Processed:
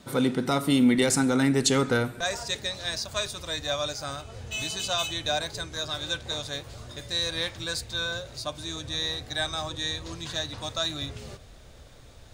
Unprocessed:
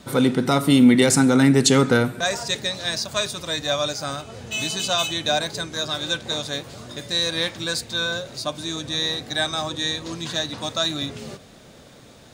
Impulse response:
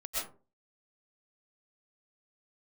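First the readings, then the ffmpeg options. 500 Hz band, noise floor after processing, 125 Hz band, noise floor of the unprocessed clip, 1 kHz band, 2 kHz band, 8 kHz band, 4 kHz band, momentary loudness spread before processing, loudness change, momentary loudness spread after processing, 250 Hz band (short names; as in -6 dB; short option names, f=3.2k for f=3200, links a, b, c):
-6.0 dB, -49 dBFS, -7.0 dB, -47 dBFS, -5.5 dB, -5.5 dB, -5.5 dB, -5.5 dB, 14 LU, -6.0 dB, 13 LU, -7.0 dB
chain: -af "asubboost=boost=11.5:cutoff=58,volume=-5.5dB"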